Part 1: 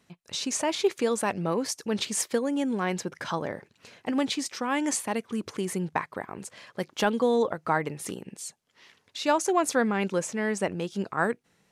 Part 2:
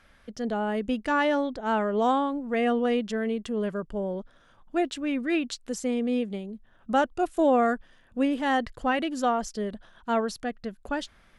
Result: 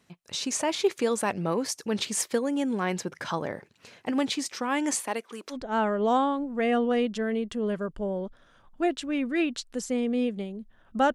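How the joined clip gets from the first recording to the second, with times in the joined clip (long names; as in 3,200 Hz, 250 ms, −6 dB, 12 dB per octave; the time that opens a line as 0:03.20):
part 1
0:05.00–0:05.57: high-pass filter 260 Hz → 640 Hz
0:05.53: continue with part 2 from 0:01.47, crossfade 0.08 s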